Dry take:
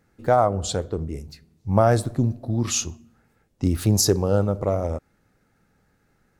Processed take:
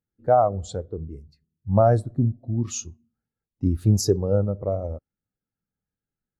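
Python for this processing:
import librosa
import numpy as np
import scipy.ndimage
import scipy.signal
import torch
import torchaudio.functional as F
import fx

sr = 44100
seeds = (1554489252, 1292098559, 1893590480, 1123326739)

y = fx.spectral_expand(x, sr, expansion=1.5)
y = F.gain(torch.from_numpy(y), -2.0).numpy()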